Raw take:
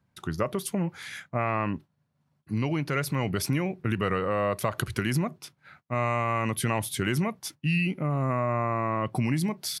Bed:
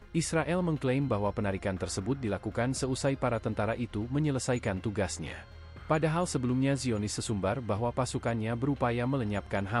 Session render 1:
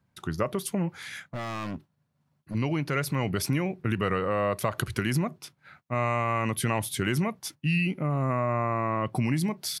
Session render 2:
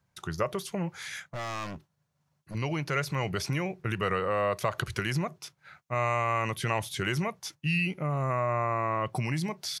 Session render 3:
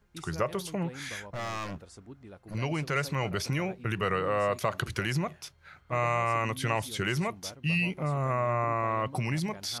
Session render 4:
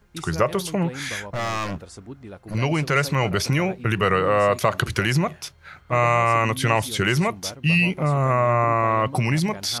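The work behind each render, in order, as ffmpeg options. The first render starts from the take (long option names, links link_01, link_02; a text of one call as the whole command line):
ffmpeg -i in.wav -filter_complex "[0:a]asettb=1/sr,asplit=3[link_01][link_02][link_03];[link_01]atrim=end=0.944[link_04];[link_02]atrim=start=0.94:end=2.55,asetpts=PTS-STARTPTS,afade=type=in:duration=0.004:curve=qsin,afade=type=out:start_time=1.606:duration=0.004:curve=qsin,asoftclip=type=hard:threshold=-31dB[link_05];[link_03]atrim=start=2.546[link_06];[link_04][link_05]acrossfade=duration=0.004:curve1=hsin:curve2=qsin[link_07];[link_07][link_06]acrossfade=duration=0.004:curve1=qsin:curve2=hsin" out.wav
ffmpeg -i in.wav -filter_complex "[0:a]equalizer=frequency=100:width_type=o:width=0.67:gain=-3,equalizer=frequency=250:width_type=o:width=0.67:gain=-11,equalizer=frequency=6300:width_type=o:width=0.67:gain=6,acrossover=split=4800[link_01][link_02];[link_02]acompressor=threshold=-41dB:ratio=4:attack=1:release=60[link_03];[link_01][link_03]amix=inputs=2:normalize=0" out.wav
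ffmpeg -i in.wav -i bed.wav -filter_complex "[1:a]volume=-16.5dB[link_01];[0:a][link_01]amix=inputs=2:normalize=0" out.wav
ffmpeg -i in.wav -af "volume=9dB" out.wav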